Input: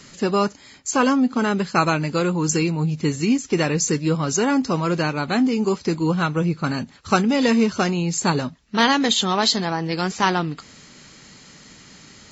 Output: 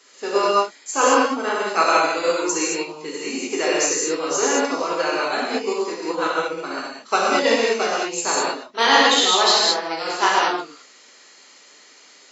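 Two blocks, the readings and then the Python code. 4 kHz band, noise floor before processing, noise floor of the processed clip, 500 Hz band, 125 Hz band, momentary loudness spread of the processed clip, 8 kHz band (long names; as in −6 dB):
+4.5 dB, −47 dBFS, −49 dBFS, +3.0 dB, −24.0 dB, 12 LU, can't be measured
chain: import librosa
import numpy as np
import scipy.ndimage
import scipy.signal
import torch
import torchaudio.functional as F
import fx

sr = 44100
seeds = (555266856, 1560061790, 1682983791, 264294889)

y = scipy.signal.sosfilt(scipy.signal.butter(4, 370.0, 'highpass', fs=sr, output='sos'), x)
y = fx.rev_gated(y, sr, seeds[0], gate_ms=250, shape='flat', drr_db=-6.5)
y = fx.upward_expand(y, sr, threshold_db=-26.0, expansion=1.5)
y = F.gain(torch.from_numpy(y), -1.0).numpy()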